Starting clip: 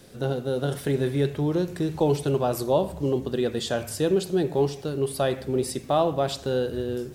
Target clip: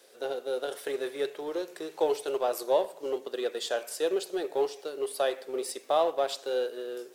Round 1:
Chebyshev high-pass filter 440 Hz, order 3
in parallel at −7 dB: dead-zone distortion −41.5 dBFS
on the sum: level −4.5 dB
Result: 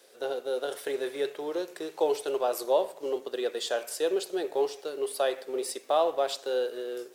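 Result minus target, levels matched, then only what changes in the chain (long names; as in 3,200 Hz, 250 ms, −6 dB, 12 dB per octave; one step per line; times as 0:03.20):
dead-zone distortion: distortion −9 dB
change: dead-zone distortion −31.5 dBFS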